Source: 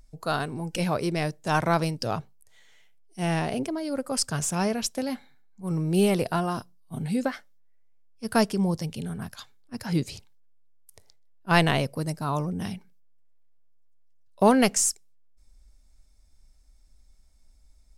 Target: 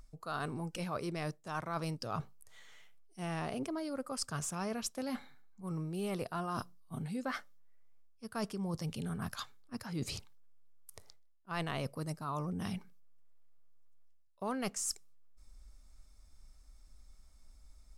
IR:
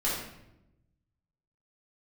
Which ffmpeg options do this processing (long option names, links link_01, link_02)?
-af "equalizer=frequency=1200:width_type=o:width=0.38:gain=8.5,areverse,acompressor=threshold=-36dB:ratio=6,areverse"